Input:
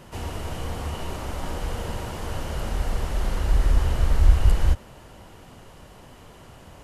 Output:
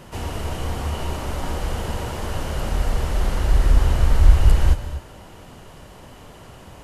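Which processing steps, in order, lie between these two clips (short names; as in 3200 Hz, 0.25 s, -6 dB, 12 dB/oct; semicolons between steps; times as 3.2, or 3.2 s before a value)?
non-linear reverb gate 0.27 s rising, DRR 10.5 dB; gain +3.5 dB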